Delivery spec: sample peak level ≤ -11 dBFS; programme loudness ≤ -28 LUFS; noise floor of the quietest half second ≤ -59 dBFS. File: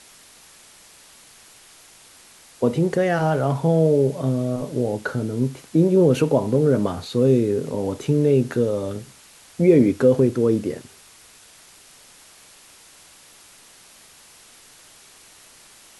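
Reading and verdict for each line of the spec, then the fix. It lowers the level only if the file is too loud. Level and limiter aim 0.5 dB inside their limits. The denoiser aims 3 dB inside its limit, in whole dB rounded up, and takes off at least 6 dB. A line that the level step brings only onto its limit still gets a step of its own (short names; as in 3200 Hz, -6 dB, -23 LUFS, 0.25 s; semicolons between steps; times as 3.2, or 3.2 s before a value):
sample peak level -4.5 dBFS: fail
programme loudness -20.0 LUFS: fail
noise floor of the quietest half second -49 dBFS: fail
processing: denoiser 6 dB, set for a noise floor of -49 dBFS; gain -8.5 dB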